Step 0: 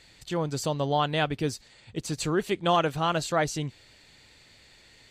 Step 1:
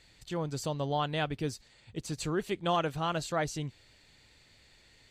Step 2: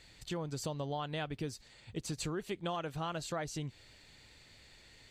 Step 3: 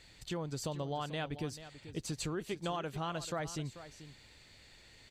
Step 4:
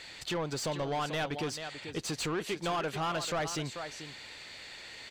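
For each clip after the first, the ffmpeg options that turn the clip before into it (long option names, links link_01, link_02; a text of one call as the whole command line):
ffmpeg -i in.wav -af "lowshelf=frequency=100:gain=5.5,volume=-6dB" out.wav
ffmpeg -i in.wav -af "acompressor=threshold=-37dB:ratio=5,volume=2dB" out.wav
ffmpeg -i in.wav -af "aecho=1:1:438:0.211" out.wav
ffmpeg -i in.wav -filter_complex "[0:a]asplit=2[link_01][link_02];[link_02]highpass=frequency=720:poles=1,volume=21dB,asoftclip=type=tanh:threshold=-24.5dB[link_03];[link_01][link_03]amix=inputs=2:normalize=0,lowpass=frequency=4200:poles=1,volume=-6dB" out.wav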